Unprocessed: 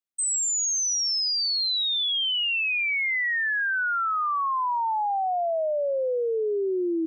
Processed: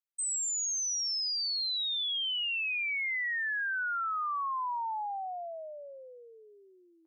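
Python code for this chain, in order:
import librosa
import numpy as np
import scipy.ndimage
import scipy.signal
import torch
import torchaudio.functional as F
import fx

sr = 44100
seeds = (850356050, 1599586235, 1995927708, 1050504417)

y = scipy.signal.sosfilt(scipy.signal.butter(4, 820.0, 'highpass', fs=sr, output='sos'), x)
y = F.gain(torch.from_numpy(y), -7.0).numpy()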